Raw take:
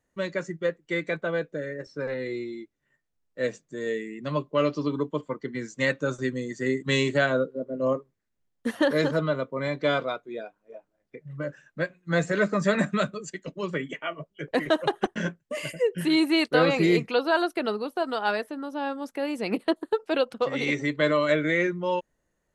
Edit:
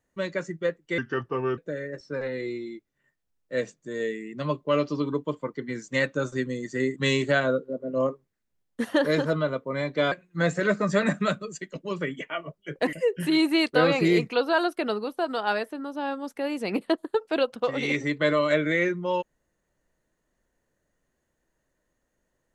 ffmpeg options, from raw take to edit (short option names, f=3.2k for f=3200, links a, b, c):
-filter_complex "[0:a]asplit=5[a][b][c][d][e];[a]atrim=end=0.984[f];[b]atrim=start=0.98:end=1.44,asetpts=PTS-STARTPTS,asetrate=33957,aresample=44100,atrim=end_sample=26345,asetpts=PTS-STARTPTS[g];[c]atrim=start=1.436:end=9.982[h];[d]atrim=start=11.838:end=14.652[i];[e]atrim=start=15.708[j];[f][g]acrossfade=d=0.004:c1=hsin:c2=hsin[k];[k][h]acrossfade=d=0.004:c1=hsin:c2=hsin[l];[l][i]acrossfade=d=0.004:c1=hsin:c2=hsin[m];[m][j]acrossfade=d=0.004:c1=hsin:c2=hsin"